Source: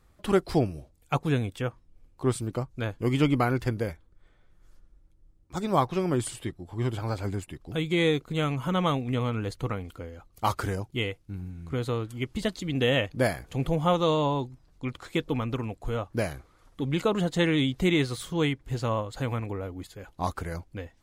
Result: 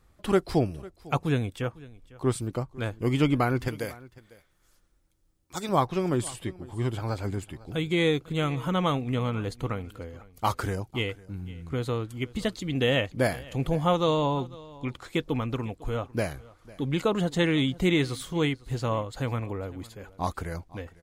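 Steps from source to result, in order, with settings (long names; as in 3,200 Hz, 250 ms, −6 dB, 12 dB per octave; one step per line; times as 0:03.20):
0:03.68–0:05.69: spectral tilt +2.5 dB per octave
single-tap delay 501 ms −21 dB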